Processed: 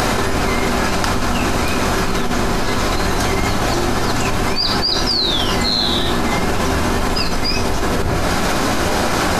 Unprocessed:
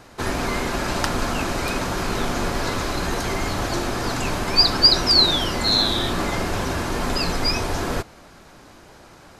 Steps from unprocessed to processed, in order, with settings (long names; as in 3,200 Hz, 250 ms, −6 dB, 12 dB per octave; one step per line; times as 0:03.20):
upward compression, threshold −25 dBFS
on a send at −5 dB: convolution reverb RT60 0.60 s, pre-delay 3 ms
on the sum: envelope flattener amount 100%
level −8 dB